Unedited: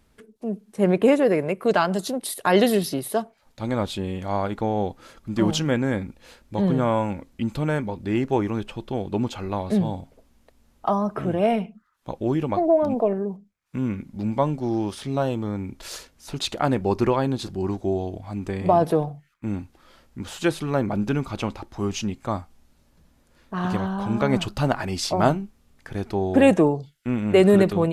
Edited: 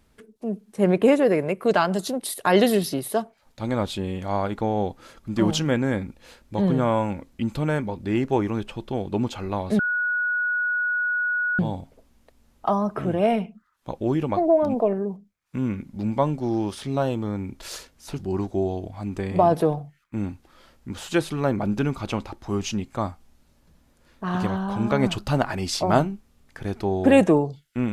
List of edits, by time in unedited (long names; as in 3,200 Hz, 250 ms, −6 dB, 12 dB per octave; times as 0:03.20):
0:09.79: insert tone 1,460 Hz −21 dBFS 1.80 s
0:16.39–0:17.49: remove